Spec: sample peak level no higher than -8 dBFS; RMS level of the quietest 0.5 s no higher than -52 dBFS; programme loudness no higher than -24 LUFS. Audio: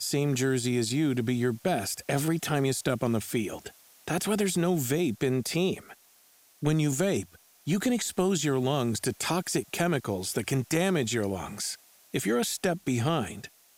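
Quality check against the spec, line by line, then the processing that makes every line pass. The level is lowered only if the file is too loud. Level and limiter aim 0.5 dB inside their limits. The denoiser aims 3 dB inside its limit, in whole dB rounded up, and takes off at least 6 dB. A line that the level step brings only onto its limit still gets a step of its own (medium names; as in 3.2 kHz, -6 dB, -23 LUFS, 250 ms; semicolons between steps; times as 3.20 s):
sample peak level -11.5 dBFS: pass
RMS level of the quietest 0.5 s -60 dBFS: pass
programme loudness -28.5 LUFS: pass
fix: none needed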